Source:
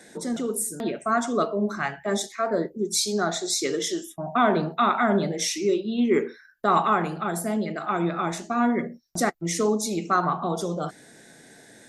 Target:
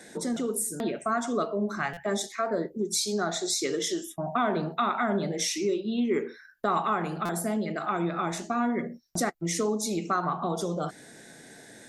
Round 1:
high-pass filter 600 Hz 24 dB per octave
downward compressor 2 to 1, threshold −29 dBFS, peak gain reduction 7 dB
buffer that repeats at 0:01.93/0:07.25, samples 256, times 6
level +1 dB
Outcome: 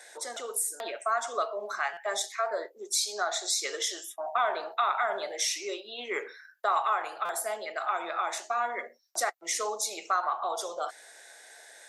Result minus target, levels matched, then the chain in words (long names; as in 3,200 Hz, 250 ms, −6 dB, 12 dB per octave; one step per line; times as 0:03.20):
500 Hz band −2.5 dB
downward compressor 2 to 1, threshold −29 dBFS, peak gain reduction 8 dB
buffer that repeats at 0:01.93/0:07.25, samples 256, times 6
level +1 dB